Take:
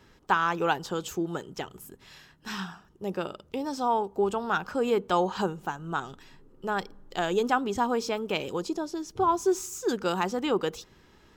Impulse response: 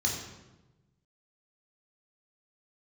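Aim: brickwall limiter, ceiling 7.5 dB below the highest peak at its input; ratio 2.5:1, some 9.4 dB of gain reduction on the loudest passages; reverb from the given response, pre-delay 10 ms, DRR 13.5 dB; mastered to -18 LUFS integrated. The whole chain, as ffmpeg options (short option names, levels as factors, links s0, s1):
-filter_complex "[0:a]acompressor=threshold=0.02:ratio=2.5,alimiter=level_in=1.33:limit=0.0631:level=0:latency=1,volume=0.75,asplit=2[s0][s1];[1:a]atrim=start_sample=2205,adelay=10[s2];[s1][s2]afir=irnorm=-1:irlink=0,volume=0.0944[s3];[s0][s3]amix=inputs=2:normalize=0,volume=9.44"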